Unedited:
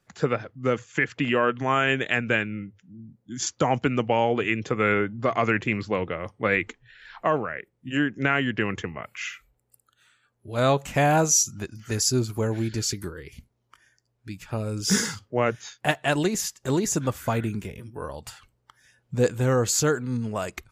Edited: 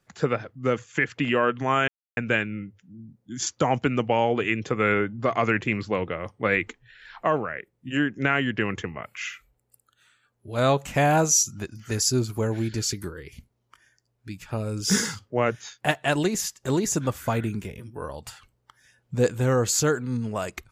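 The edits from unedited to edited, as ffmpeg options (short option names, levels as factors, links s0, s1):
-filter_complex "[0:a]asplit=3[s0][s1][s2];[s0]atrim=end=1.88,asetpts=PTS-STARTPTS,afade=t=out:st=1.876:d=0.004:c=hsin[s3];[s1]atrim=start=1.88:end=2.17,asetpts=PTS-STARTPTS,volume=0[s4];[s2]atrim=start=2.17,asetpts=PTS-STARTPTS,afade=t=in:d=0.004:c=hsin[s5];[s3][s4][s5]concat=n=3:v=0:a=1"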